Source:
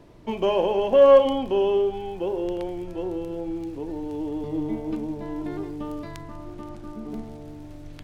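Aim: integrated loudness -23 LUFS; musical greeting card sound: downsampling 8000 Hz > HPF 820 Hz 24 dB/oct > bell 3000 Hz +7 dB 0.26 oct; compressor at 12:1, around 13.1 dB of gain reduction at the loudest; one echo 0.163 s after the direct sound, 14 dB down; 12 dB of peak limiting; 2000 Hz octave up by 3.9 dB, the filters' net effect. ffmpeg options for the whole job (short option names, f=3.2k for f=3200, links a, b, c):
-af "equalizer=f=2k:t=o:g=3.5,acompressor=threshold=-23dB:ratio=12,alimiter=level_in=3dB:limit=-24dB:level=0:latency=1,volume=-3dB,aecho=1:1:163:0.2,aresample=8000,aresample=44100,highpass=f=820:w=0.5412,highpass=f=820:w=1.3066,equalizer=f=3k:t=o:w=0.26:g=7,volume=22.5dB"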